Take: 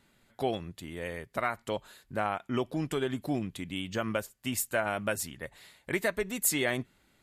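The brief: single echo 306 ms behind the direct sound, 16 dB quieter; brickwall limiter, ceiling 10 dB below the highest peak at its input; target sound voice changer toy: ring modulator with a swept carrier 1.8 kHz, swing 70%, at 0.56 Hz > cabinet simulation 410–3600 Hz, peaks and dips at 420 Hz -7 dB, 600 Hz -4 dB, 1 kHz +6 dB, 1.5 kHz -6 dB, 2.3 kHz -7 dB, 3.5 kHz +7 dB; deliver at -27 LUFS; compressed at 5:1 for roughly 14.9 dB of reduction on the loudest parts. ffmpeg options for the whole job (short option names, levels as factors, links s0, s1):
-af "acompressor=threshold=0.00891:ratio=5,alimiter=level_in=4.47:limit=0.0631:level=0:latency=1,volume=0.224,aecho=1:1:306:0.158,aeval=exprs='val(0)*sin(2*PI*1800*n/s+1800*0.7/0.56*sin(2*PI*0.56*n/s))':c=same,highpass=410,equalizer=f=420:t=q:w=4:g=-7,equalizer=f=600:t=q:w=4:g=-4,equalizer=f=1000:t=q:w=4:g=6,equalizer=f=1500:t=q:w=4:g=-6,equalizer=f=2300:t=q:w=4:g=-7,equalizer=f=3500:t=q:w=4:g=7,lowpass=f=3600:w=0.5412,lowpass=f=3600:w=1.3066,volume=15.8"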